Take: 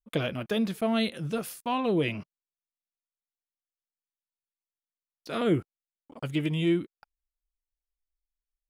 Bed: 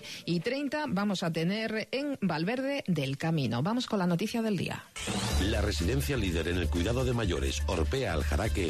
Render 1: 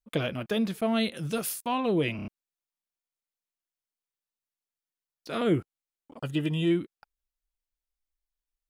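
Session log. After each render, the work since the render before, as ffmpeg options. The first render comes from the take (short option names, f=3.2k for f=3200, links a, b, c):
-filter_complex "[0:a]asplit=3[a][b][c];[a]afade=t=out:st=1.16:d=0.02[d];[b]highshelf=f=3.3k:g=9,afade=t=in:st=1.16:d=0.02,afade=t=out:st=1.66:d=0.02[e];[c]afade=t=in:st=1.66:d=0.02[f];[d][e][f]amix=inputs=3:normalize=0,asettb=1/sr,asplit=3[g][h][i];[g]atrim=end=6.184[j];[h]atrim=start=6.18:end=6.71,asetpts=PTS-STARTPTS,afade=t=in:d=0.004:c=qsin,afade=t=out:st=0.526:d=0.004:c=qsin,asuperstop=centerf=2200:order=12:qfactor=6.8[k];[i]atrim=start=6.706[l];[j][k]acrossfade=d=0.004:c1=hsin:c2=qsin[m];[m][l]acrossfade=d=0.004:c1=qsin:c2=hsin,asplit=5[n][o][p][q][r];[n]atrim=end=2.192[s];[o]atrim=start=2.158:end=2.192[t];[p]atrim=start=2.158:end=2.192[u];[q]atrim=start=2.158:end=2.192[v];[r]atrim=start=2.278[w];[s][t]acrossfade=d=0.004:c1=hsin:c2=hsin[x];[x][u]acrossfade=d=0.004:c1=hsin:c2=hsin[y];[y][v]acrossfade=d=0.004:c1=hsin:c2=hsin[z];[z][w]acrossfade=d=0.004:c1=hsin:c2=hsin"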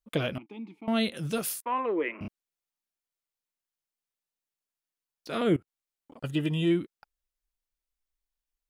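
-filter_complex "[0:a]asettb=1/sr,asplit=3[a][b][c];[a]atrim=end=0.384[d];[b]atrim=start=0.38:end=0.88,asetpts=PTS-STARTPTS,afade=t=in:d=0.004:c=qsin,afade=t=out:st=0.496:d=0.004:c=qsin,asplit=3[e][f][g];[e]bandpass=f=300:t=q:w=8,volume=0dB[h];[f]bandpass=f=870:t=q:w=8,volume=-6dB[i];[g]bandpass=f=2.24k:t=q:w=8,volume=-9dB[j];[h][i][j]amix=inputs=3:normalize=0[k];[c]atrim=start=0.876[l];[d][k]acrossfade=d=0.004:c1=hsin:c2=qsin[m];[m][l]acrossfade=d=0.004:c1=qsin:c2=hsin,asettb=1/sr,asplit=3[n][o][p];[n]atrim=end=1.624[q];[o]atrim=start=1.62:end=2.21,asetpts=PTS-STARTPTS,afade=t=in:d=0.004:c=qsin,afade=t=out:st=0.586:d=0.004:c=qsin,highpass=f=330:w=0.5412,highpass=f=330:w=1.3066,equalizer=f=690:t=q:w=4:g=-9,equalizer=f=1.1k:t=q:w=4:g=5,equalizer=f=2k:t=q:w=4:g=7,lowpass=f=2.1k:w=0.5412,lowpass=f=2.1k:w=1.3066[r];[p]atrim=start=2.206[s];[q][r]acrossfade=d=0.004:c1=hsin:c2=qsin[t];[t][s]acrossfade=d=0.004:c1=qsin:c2=hsin,asettb=1/sr,asplit=3[u][v][w];[u]atrim=end=5.564[x];[v]atrim=start=5.56:end=6.24,asetpts=PTS-STARTPTS,afade=t=in:d=0.004:c=qsin,afade=t=out:st=0.676:d=0.004:c=qsin,acompressor=threshold=-45dB:ratio=16:attack=3.2:release=140:knee=1:detection=peak[y];[w]atrim=start=6.236[z];[x][y]acrossfade=d=0.004:c1=hsin:c2=qsin[aa];[aa][z]acrossfade=d=0.004:c1=qsin:c2=hsin"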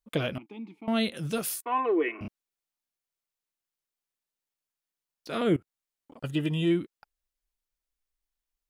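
-filter_complex "[0:a]asettb=1/sr,asplit=3[a][b][c];[a]atrim=end=1.524[d];[b]atrim=start=1.52:end=2.22,asetpts=PTS-STARTPTS,afade=t=in:d=0.004:c=qsin,afade=t=out:st=0.696:d=0.004:c=qsin,aecho=1:1:2.7:0.74,atrim=end_sample=30870[e];[c]atrim=start=2.216[f];[d][e]acrossfade=d=0.004:c1=hsin:c2=qsin[g];[g][f]acrossfade=d=0.004:c1=qsin:c2=hsin"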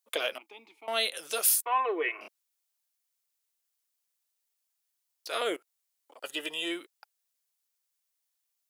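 -af "highpass=f=470:w=0.5412,highpass=f=470:w=1.3066,highshelf=f=3.6k:g=10.5"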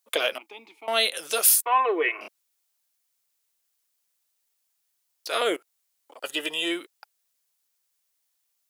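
-af "volume=6dB"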